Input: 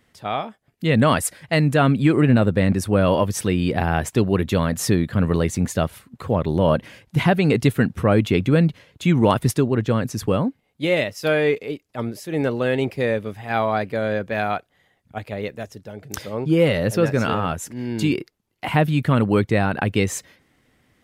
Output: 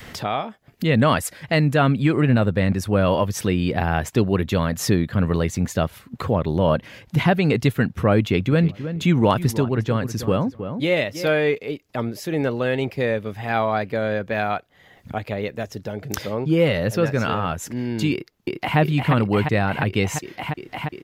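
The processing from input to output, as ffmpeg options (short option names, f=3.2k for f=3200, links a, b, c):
-filter_complex "[0:a]asplit=3[a][b][c];[a]afade=t=out:st=8.5:d=0.02[d];[b]asplit=2[e][f];[f]adelay=316,lowpass=f=1.9k:p=1,volume=-13dB,asplit=2[g][h];[h]adelay=316,lowpass=f=1.9k:p=1,volume=0.16[i];[e][g][i]amix=inputs=3:normalize=0,afade=t=in:st=8.5:d=0.02,afade=t=out:st=11.29:d=0.02[j];[c]afade=t=in:st=11.29:d=0.02[k];[d][j][k]amix=inputs=3:normalize=0,asplit=2[l][m];[m]afade=t=in:st=18.12:d=0.01,afade=t=out:st=18.78:d=0.01,aecho=0:1:350|700|1050|1400|1750|2100|2450|2800|3150|3500|3850|4200:0.707946|0.566357|0.453085|0.362468|0.289975|0.23198|0.185584|0.148467|0.118774|0.0950189|0.0760151|0.0608121[n];[l][n]amix=inputs=2:normalize=0,equalizer=f=9.2k:w=2.2:g=-7.5,acompressor=mode=upward:threshold=-20dB:ratio=2.5,adynamicequalizer=threshold=0.0447:dfrequency=310:dqfactor=0.95:tfrequency=310:tqfactor=0.95:attack=5:release=100:ratio=0.375:range=2:mode=cutabove:tftype=bell"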